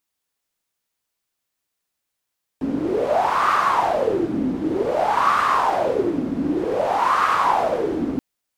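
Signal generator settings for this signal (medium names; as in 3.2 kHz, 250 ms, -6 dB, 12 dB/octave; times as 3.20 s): wind-like swept noise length 5.58 s, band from 260 Hz, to 1.2 kHz, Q 7, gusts 3, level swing 5 dB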